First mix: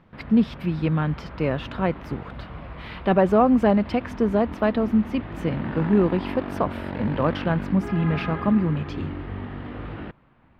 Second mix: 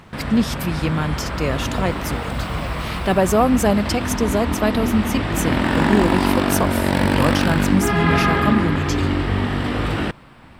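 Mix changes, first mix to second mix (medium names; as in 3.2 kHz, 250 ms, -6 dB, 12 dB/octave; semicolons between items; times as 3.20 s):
background +12.0 dB; master: remove distance through air 410 m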